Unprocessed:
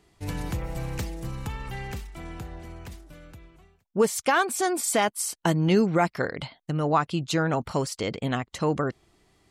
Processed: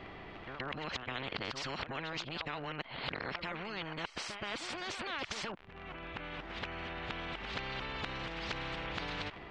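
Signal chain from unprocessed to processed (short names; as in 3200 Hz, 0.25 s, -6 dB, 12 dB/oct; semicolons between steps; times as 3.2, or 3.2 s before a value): whole clip reversed; compressor, threshold -23 dBFS, peak gain reduction 8 dB; limiter -24.5 dBFS, peak gain reduction 11 dB; crackle 46/s -47 dBFS; LPF 2900 Hz 24 dB/oct; pre-echo 0.125 s -18.5 dB; spectral compressor 4:1; gain +4 dB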